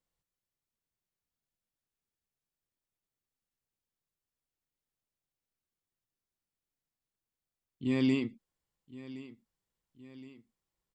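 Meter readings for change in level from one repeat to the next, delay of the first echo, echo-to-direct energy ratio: −5.5 dB, 1,068 ms, −15.5 dB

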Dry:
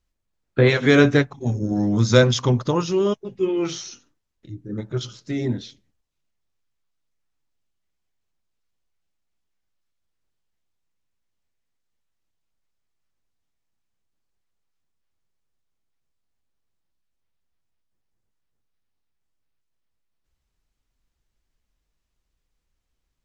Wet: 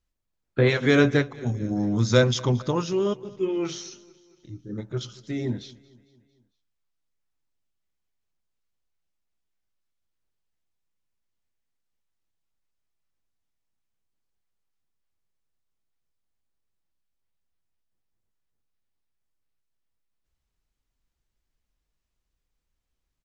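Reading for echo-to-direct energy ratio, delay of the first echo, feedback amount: −21.0 dB, 226 ms, 55%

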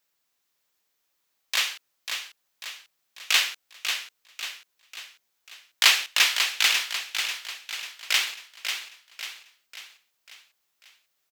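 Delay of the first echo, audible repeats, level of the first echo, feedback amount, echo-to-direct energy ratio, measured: 543 ms, 5, −7.0 dB, 48%, −6.0 dB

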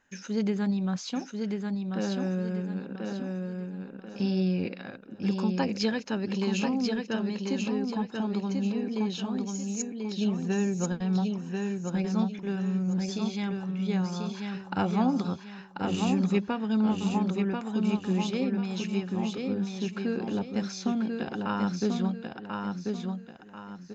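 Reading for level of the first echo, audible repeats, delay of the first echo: −4.0 dB, 3, 1,039 ms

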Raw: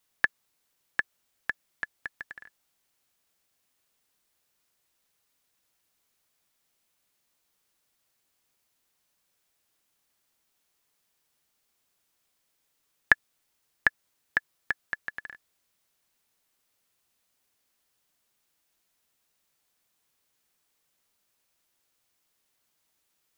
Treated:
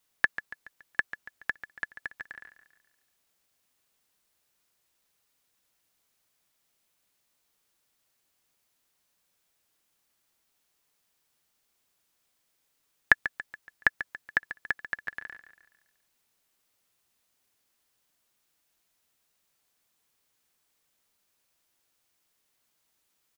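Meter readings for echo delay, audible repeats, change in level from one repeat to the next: 141 ms, 4, −6.5 dB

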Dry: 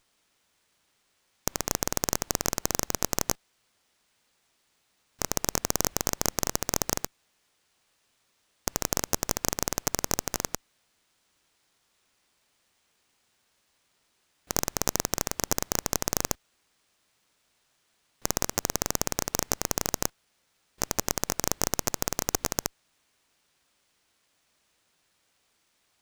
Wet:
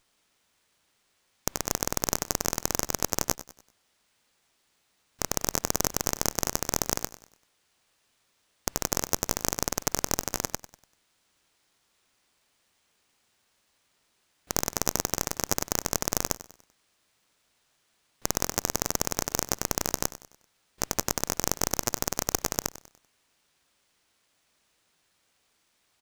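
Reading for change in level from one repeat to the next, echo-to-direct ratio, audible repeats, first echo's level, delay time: −8.0 dB, −14.5 dB, 3, −15.5 dB, 97 ms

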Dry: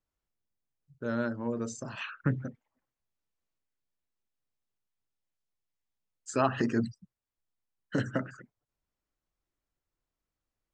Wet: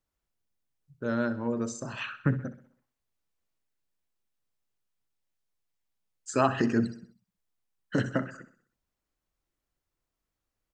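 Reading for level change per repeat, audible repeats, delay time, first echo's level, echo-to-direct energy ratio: −6.0 dB, 4, 64 ms, −15.0 dB, −14.0 dB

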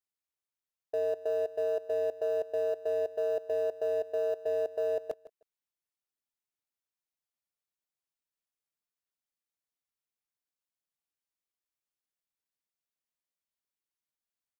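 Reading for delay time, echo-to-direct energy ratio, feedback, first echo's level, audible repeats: 157 ms, −17.0 dB, 16%, −17.0 dB, 2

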